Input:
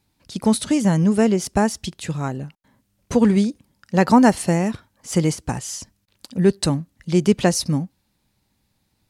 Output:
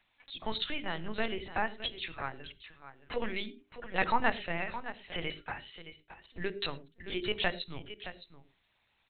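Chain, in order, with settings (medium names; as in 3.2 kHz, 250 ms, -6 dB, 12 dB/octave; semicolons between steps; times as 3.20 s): differentiator; upward compressor, threshold -37 dBFS; level-controlled noise filter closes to 2 kHz, open at -32 dBFS; spectral noise reduction 11 dB; delay 616 ms -12.5 dB; LPC vocoder at 8 kHz pitch kept; hum notches 50/100/150/200/250/300/350/400 Hz; on a send at -18 dB: resonant low shelf 630 Hz +9 dB, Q 1.5 + reverberation, pre-delay 3 ms; on the sum: trim +8 dB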